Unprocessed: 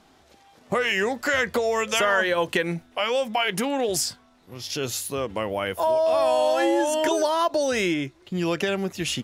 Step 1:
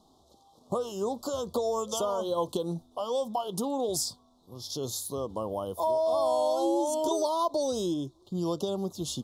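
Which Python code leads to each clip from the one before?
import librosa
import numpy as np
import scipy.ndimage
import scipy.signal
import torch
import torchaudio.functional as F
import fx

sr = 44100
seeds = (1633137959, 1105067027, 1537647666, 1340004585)

y = scipy.signal.sosfilt(scipy.signal.ellip(3, 1.0, 50, [1100.0, 3600.0], 'bandstop', fs=sr, output='sos'), x)
y = y * 10.0 ** (-4.5 / 20.0)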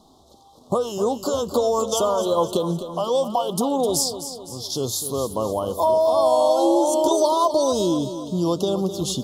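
y = fx.echo_feedback(x, sr, ms=257, feedback_pct=50, wet_db=-11.0)
y = y * 10.0 ** (8.5 / 20.0)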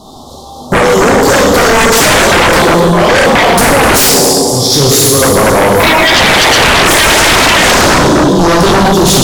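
y = fx.rev_plate(x, sr, seeds[0], rt60_s=1.9, hf_ratio=0.75, predelay_ms=0, drr_db=-5.0)
y = fx.fold_sine(y, sr, drive_db=11, ceiling_db=-6.5)
y = y * 10.0 ** (3.0 / 20.0)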